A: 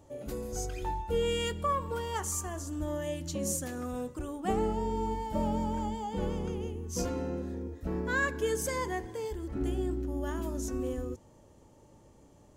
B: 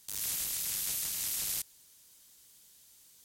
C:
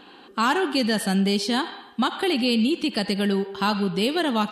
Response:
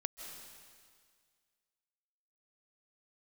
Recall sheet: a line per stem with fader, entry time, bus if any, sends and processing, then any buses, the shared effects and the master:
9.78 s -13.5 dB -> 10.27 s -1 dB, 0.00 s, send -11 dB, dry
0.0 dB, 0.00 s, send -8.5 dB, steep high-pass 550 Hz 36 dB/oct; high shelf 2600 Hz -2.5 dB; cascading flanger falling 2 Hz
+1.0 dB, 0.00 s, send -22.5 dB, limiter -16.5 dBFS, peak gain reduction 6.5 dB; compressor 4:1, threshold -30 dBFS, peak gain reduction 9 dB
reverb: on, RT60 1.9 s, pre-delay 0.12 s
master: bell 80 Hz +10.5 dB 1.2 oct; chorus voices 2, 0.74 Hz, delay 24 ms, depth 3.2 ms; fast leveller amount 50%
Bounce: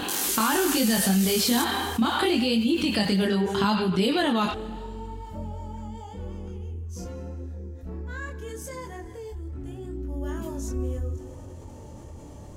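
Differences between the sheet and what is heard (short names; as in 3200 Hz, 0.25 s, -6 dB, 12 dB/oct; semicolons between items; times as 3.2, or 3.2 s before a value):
stem A -13.5 dB -> -22.0 dB; stem B 0.0 dB -> +8.5 dB; stem C +1.0 dB -> +7.5 dB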